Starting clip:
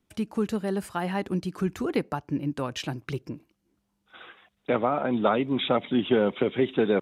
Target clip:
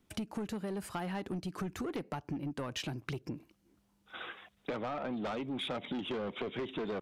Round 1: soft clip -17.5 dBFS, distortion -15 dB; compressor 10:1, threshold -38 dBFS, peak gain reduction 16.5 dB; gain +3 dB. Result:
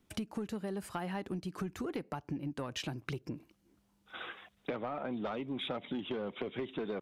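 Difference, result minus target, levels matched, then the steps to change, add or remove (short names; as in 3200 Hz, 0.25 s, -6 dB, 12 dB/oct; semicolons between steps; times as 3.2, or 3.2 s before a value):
soft clip: distortion -7 dB
change: soft clip -24.5 dBFS, distortion -8 dB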